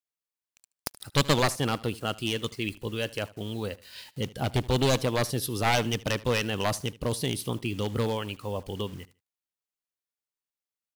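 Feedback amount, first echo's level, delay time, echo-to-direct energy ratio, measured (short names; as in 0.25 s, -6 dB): 25%, -20.5 dB, 76 ms, -20.0 dB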